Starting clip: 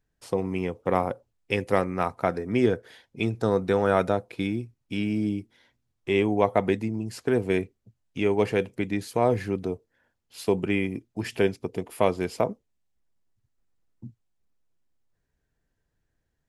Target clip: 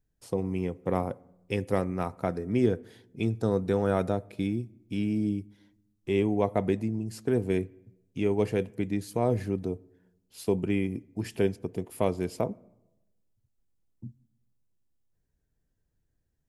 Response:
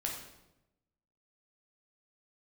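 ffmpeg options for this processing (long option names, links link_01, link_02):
-filter_complex "[0:a]equalizer=frequency=1600:width=0.31:gain=-9,asplit=2[link_01][link_02];[1:a]atrim=start_sample=2205,lowpass=2400[link_03];[link_02][link_03]afir=irnorm=-1:irlink=0,volume=-20dB[link_04];[link_01][link_04]amix=inputs=2:normalize=0"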